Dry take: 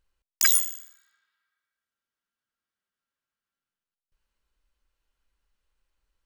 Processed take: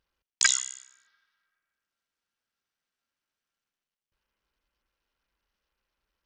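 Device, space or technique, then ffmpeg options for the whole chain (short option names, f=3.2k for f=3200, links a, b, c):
Bluetooth headset: -af "highpass=f=120:p=1,aresample=16000,aresample=44100,volume=1.5dB" -ar 48000 -c:a sbc -b:a 64k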